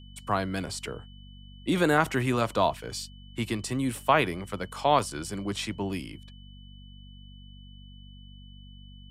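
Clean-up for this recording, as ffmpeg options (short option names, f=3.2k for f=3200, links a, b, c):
-af "bandreject=f=48.1:t=h:w=4,bandreject=f=96.2:t=h:w=4,bandreject=f=144.3:t=h:w=4,bandreject=f=192.4:t=h:w=4,bandreject=f=240.5:t=h:w=4,bandreject=f=3k:w=30"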